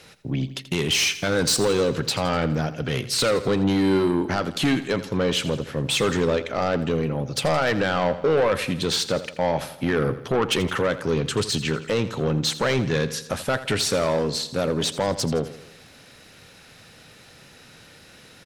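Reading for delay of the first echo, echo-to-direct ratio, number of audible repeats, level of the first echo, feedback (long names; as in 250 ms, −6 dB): 83 ms, −13.0 dB, 4, −14.5 dB, 54%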